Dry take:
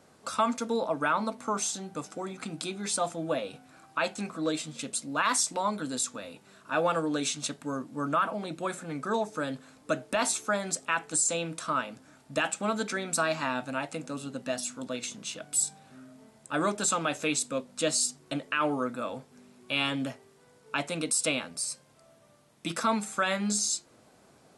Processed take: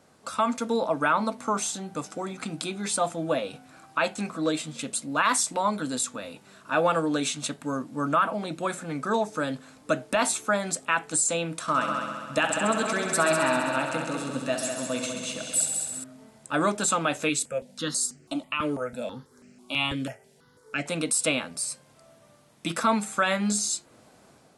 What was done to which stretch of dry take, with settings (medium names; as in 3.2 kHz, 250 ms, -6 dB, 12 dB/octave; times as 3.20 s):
11.61–16.04 s: multi-head delay 66 ms, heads all three, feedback 59%, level -9.5 dB
17.29–20.86 s: stepped phaser 6.1 Hz 210–3600 Hz
whole clip: dynamic bell 5.5 kHz, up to -5 dB, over -45 dBFS, Q 1.5; level rider gain up to 4 dB; peaking EQ 390 Hz -2 dB 0.36 oct